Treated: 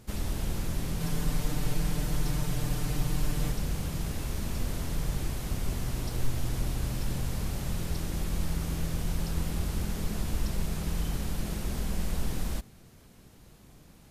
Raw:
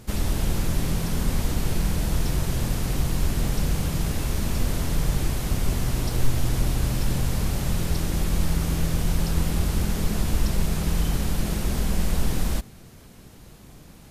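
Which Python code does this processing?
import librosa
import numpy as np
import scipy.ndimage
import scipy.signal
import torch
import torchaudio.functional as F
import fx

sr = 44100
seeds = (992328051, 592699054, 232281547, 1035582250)

y = fx.comb(x, sr, ms=6.7, depth=0.87, at=(1.0, 3.52))
y = y * librosa.db_to_amplitude(-7.5)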